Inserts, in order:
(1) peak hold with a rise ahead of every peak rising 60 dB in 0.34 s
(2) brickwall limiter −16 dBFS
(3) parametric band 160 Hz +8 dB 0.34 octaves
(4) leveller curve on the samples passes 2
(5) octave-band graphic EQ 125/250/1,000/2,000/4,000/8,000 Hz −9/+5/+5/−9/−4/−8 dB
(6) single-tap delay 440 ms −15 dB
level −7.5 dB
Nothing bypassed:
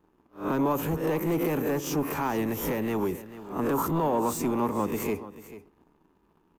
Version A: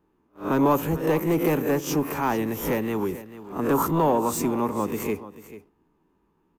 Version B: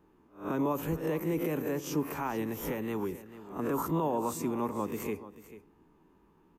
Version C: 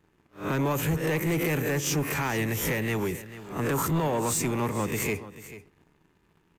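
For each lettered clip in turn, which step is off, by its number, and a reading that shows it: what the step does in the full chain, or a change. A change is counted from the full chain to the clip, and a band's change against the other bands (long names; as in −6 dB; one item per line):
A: 2, change in crest factor +2.5 dB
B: 4, change in integrated loudness −5.0 LU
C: 5, change in crest factor −2.5 dB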